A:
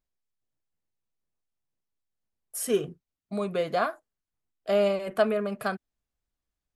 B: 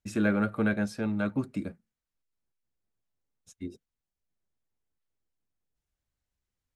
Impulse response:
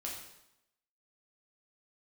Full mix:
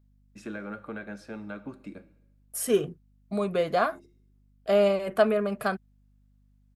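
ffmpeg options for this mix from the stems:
-filter_complex "[0:a]highshelf=f=7200:g=10.5,volume=1.26,asplit=2[s0][s1];[1:a]highpass=f=370:p=1,acompressor=threshold=0.0316:ratio=6,adelay=300,volume=0.596,asplit=2[s2][s3];[s3]volume=0.316[s4];[s1]apad=whole_len=311237[s5];[s2][s5]sidechaincompress=threshold=0.0501:ratio=8:attack=6:release=459[s6];[2:a]atrim=start_sample=2205[s7];[s4][s7]afir=irnorm=-1:irlink=0[s8];[s0][s6][s8]amix=inputs=3:normalize=0,highshelf=f=4800:g=-10,aeval=exprs='val(0)+0.000891*(sin(2*PI*50*n/s)+sin(2*PI*2*50*n/s)/2+sin(2*PI*3*50*n/s)/3+sin(2*PI*4*50*n/s)/4+sin(2*PI*5*50*n/s)/5)':c=same"

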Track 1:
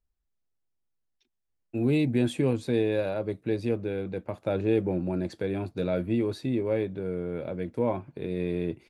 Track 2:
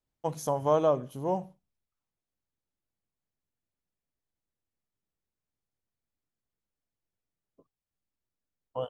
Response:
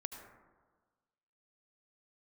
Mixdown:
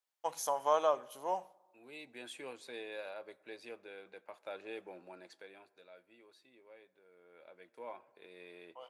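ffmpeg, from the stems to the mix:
-filter_complex "[0:a]volume=1.19,afade=t=in:st=1.7:d=0.71:silence=0.266073,afade=t=out:st=5.04:d=0.8:silence=0.223872,afade=t=in:st=7.09:d=0.71:silence=0.298538,asplit=3[s0][s1][s2];[s1]volume=0.2[s3];[1:a]volume=1.06,asplit=2[s4][s5];[s5]volume=0.119[s6];[s2]apad=whole_len=392084[s7];[s4][s7]sidechaincompress=threshold=0.00224:ratio=8:attack=16:release=501[s8];[2:a]atrim=start_sample=2205[s9];[s3][s6]amix=inputs=2:normalize=0[s10];[s10][s9]afir=irnorm=-1:irlink=0[s11];[s0][s8][s11]amix=inputs=3:normalize=0,highpass=860"

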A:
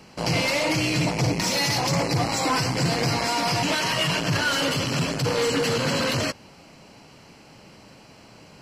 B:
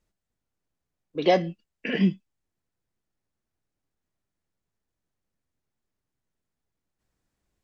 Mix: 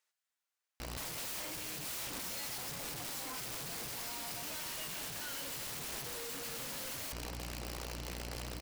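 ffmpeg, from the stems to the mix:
-filter_complex "[0:a]aeval=exprs='val(0)+0.0112*(sin(2*PI*60*n/s)+sin(2*PI*2*60*n/s)/2+sin(2*PI*3*60*n/s)/3+sin(2*PI*4*60*n/s)/4+sin(2*PI*5*60*n/s)/5)':c=same,asoftclip=type=tanh:threshold=0.0398,highshelf=f=4800:g=2.5,adelay=800,volume=1[s0];[1:a]highpass=1200,volume=1.19[s1];[s0][s1]amix=inputs=2:normalize=0,lowshelf=f=100:g=-4,aeval=exprs='(mod(63.1*val(0)+1,2)-1)/63.1':c=same"

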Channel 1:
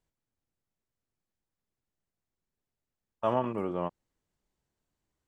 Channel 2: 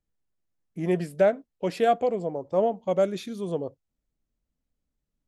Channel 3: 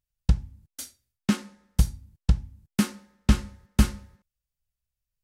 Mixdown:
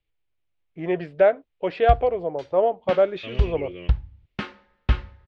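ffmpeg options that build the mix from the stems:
-filter_complex "[0:a]firequalizer=gain_entry='entry(370,0);entry(860,-29);entry(2200,11)':delay=0.05:min_phase=1,volume=0.794[s0];[1:a]volume=1.33[s1];[2:a]adelay=1600,volume=0.794[s2];[s0][s1][s2]amix=inputs=3:normalize=0,lowpass=f=3300:w=0.5412,lowpass=f=3300:w=1.3066,equalizer=f=210:w=1.8:g=-14.5,dynaudnorm=f=360:g=5:m=1.5"

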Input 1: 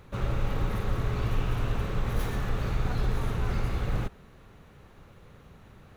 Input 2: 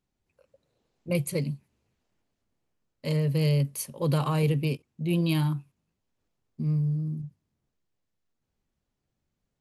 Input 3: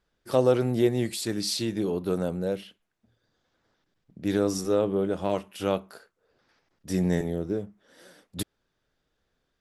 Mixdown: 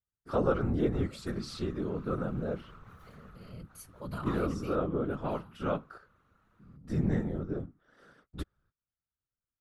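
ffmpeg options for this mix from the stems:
-filter_complex "[0:a]acompressor=threshold=0.0316:ratio=6,adelay=800,volume=0.224[s0];[1:a]volume=0.335,afade=t=in:st=3.47:d=0.34:silence=0.251189,afade=t=out:st=4.83:d=0.24:silence=0.237137,asplit=2[s1][s2];[2:a]aemphasis=mode=reproduction:type=bsi,agate=range=0.0708:threshold=0.00141:ratio=16:detection=peak,volume=0.631[s3];[s2]apad=whole_len=298445[s4];[s0][s4]sidechaincompress=threshold=0.00501:ratio=8:attack=6.3:release=309[s5];[s5][s1][s3]amix=inputs=3:normalize=0,equalizer=f=1300:t=o:w=0.52:g=14,afftfilt=real='hypot(re,im)*cos(2*PI*random(0))':imag='hypot(re,im)*sin(2*PI*random(1))':win_size=512:overlap=0.75"

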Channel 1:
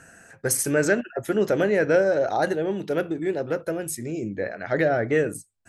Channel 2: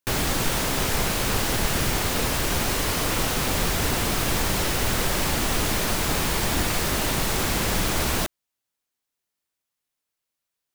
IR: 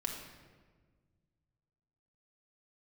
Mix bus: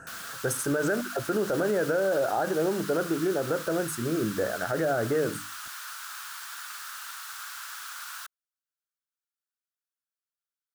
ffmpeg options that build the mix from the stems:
-filter_complex "[0:a]bandreject=f=50:t=h:w=6,bandreject=f=100:t=h:w=6,bandreject=f=150:t=h:w=6,bandreject=f=200:t=h:w=6,bandreject=f=250:t=h:w=6,bandreject=f=300:t=h:w=6,acompressor=threshold=0.0562:ratio=2.5,volume=1.33[s0];[1:a]highpass=f=1500:w=0.5412,highpass=f=1500:w=1.3066,volume=0.473[s1];[s0][s1]amix=inputs=2:normalize=0,highshelf=f=1700:t=q:w=3:g=-6.5,alimiter=limit=0.126:level=0:latency=1:release=32"

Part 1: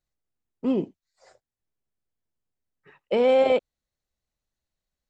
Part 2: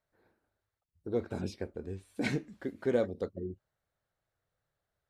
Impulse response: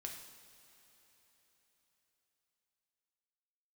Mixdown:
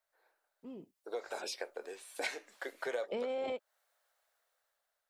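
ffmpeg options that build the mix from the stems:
-filter_complex "[0:a]alimiter=limit=0.126:level=0:latency=1:release=11,volume=0.794[s0];[1:a]highpass=f=570:w=0.5412,highpass=f=570:w=1.3066,dynaudnorm=f=280:g=7:m=2.66,volume=1,asplit=2[s1][s2];[s2]apad=whole_len=224597[s3];[s0][s3]sidechaingate=range=0.0891:threshold=0.00251:ratio=16:detection=peak[s4];[s4][s1]amix=inputs=2:normalize=0,highshelf=f=5300:g=5,acompressor=threshold=0.0158:ratio=4"

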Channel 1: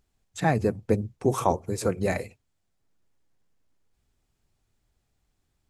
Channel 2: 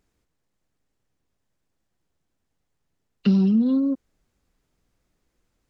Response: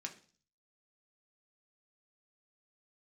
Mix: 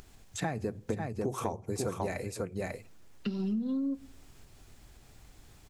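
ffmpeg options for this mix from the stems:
-filter_complex "[0:a]acompressor=mode=upward:threshold=0.0178:ratio=2.5,volume=0.708,asplit=4[s0][s1][s2][s3];[s1]volume=0.251[s4];[s2]volume=0.531[s5];[1:a]volume=0.668,asplit=2[s6][s7];[s7]volume=0.376[s8];[s3]apad=whole_len=251132[s9];[s6][s9]sidechaincompress=threshold=0.00251:ratio=8:attack=16:release=865[s10];[2:a]atrim=start_sample=2205[s11];[s4][s8]amix=inputs=2:normalize=0[s12];[s12][s11]afir=irnorm=-1:irlink=0[s13];[s5]aecho=0:1:544:1[s14];[s0][s10][s13][s14]amix=inputs=4:normalize=0,acompressor=threshold=0.0355:ratio=10"

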